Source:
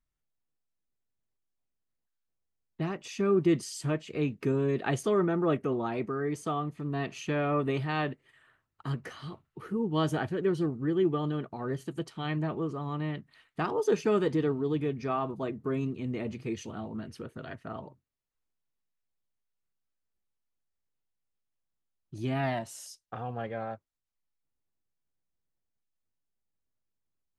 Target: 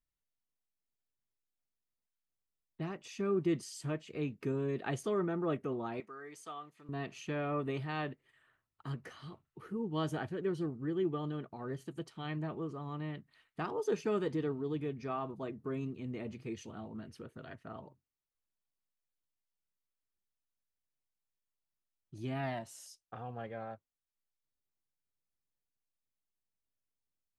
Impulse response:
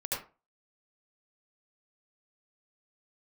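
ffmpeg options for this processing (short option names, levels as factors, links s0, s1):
-filter_complex "[0:a]asettb=1/sr,asplit=3[s0][s1][s2];[s0]atrim=end=6.004[s3];[s1]atrim=start=6:end=6.89,asetpts=PTS-STARTPTS,afade=t=in:d=0.004:c=qsin,afade=t=out:st=0.886:d=0.004:c=qsin,highpass=f=1400:p=1[s4];[s2]atrim=start=6.886[s5];[s3][s4]acrossfade=d=0.004:c1=hsin:c2=qsin[s6];[s6][s5]acrossfade=d=0.004:c1=qsin:c2=hsin,volume=0.447"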